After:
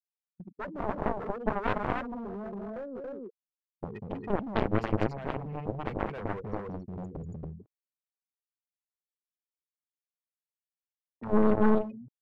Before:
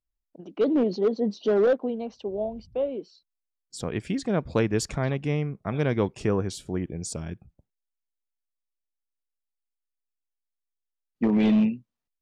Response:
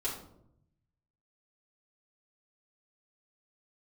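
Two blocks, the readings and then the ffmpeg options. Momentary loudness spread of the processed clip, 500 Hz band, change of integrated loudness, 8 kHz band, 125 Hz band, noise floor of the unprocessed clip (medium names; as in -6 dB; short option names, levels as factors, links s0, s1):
17 LU, -6.5 dB, -6.0 dB, under -25 dB, -6.5 dB, -84 dBFS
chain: -filter_complex "[0:a]equalizer=f=100:t=o:w=0.33:g=6,equalizer=f=200:t=o:w=0.33:g=6,equalizer=f=315:t=o:w=0.33:g=-8,equalizer=f=3150:t=o:w=0.33:g=5,equalizer=f=8000:t=o:w=0.33:g=-10,afftfilt=real='re*gte(hypot(re,im),0.0562)':imag='im*gte(hypot(re,im),0.0562)':win_size=1024:overlap=0.75,agate=range=0.0447:threshold=0.00501:ratio=16:detection=peak,asplit=2[s0][s1];[s1]acompressor=threshold=0.0251:ratio=10,volume=0.708[s2];[s0][s2]amix=inputs=2:normalize=0,acrossover=split=440[s3][s4];[s3]aeval=exprs='val(0)*(1-1/2+1/2*cos(2*PI*2.1*n/s))':c=same[s5];[s4]aeval=exprs='val(0)*(1-1/2-1/2*cos(2*PI*2.1*n/s))':c=same[s6];[s5][s6]amix=inputs=2:normalize=0,aecho=1:1:192.4|279.9:0.562|0.794,areverse,acompressor=mode=upward:threshold=0.00631:ratio=2.5,areverse,aeval=exprs='clip(val(0),-1,0.02)':c=same,highshelf=f=2800:g=-9.5,aeval=exprs='0.282*(cos(1*acos(clip(val(0)/0.282,-1,1)))-cos(1*PI/2))+0.0794*(cos(7*acos(clip(val(0)/0.282,-1,1)))-cos(7*PI/2))':c=same,volume=0.794"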